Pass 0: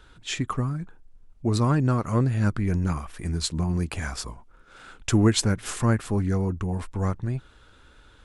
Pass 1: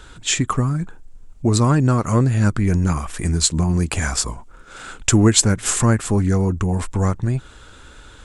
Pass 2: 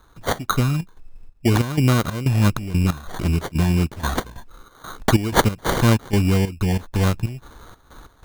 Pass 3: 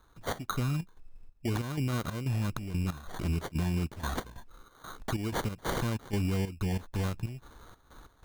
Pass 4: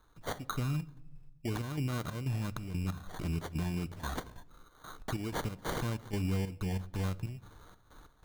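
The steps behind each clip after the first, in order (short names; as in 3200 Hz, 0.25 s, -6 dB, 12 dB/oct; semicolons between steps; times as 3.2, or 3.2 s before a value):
bell 7500 Hz +9 dB 0.58 oct; in parallel at +2.5 dB: compressor, threshold -29 dBFS, peak gain reduction 14 dB; on the sum: gain +3 dB
sample-and-hold 17×; step gate ".x.xx.xx" 93 bpm -12 dB
limiter -14 dBFS, peak gain reduction 11.5 dB; gain -9 dB
shoebox room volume 2300 m³, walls furnished, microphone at 0.45 m; gain -3.5 dB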